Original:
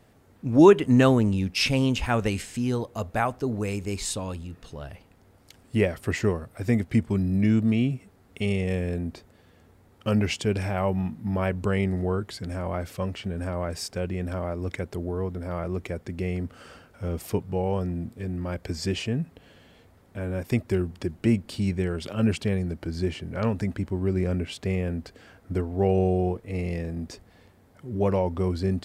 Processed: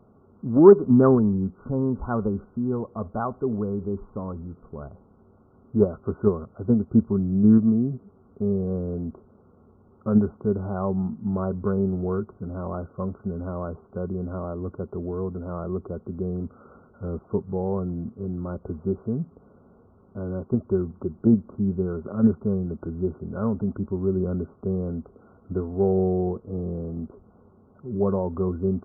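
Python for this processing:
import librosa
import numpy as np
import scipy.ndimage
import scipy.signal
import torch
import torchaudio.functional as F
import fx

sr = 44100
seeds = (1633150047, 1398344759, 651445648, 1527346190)

p1 = fx.level_steps(x, sr, step_db=20)
p2 = x + (p1 * librosa.db_to_amplitude(-2.0))
p3 = fx.cheby_harmonics(p2, sr, harmonics=(5,), levels_db=(-31,), full_scale_db=-1.0)
p4 = fx.brickwall_lowpass(p3, sr, high_hz=1500.0)
p5 = fx.small_body(p4, sr, hz=(210.0, 390.0, 1100.0), ring_ms=45, db=8)
p6 = fx.doppler_dist(p5, sr, depth_ms=0.1)
y = p6 * librosa.db_to_amplitude(-6.0)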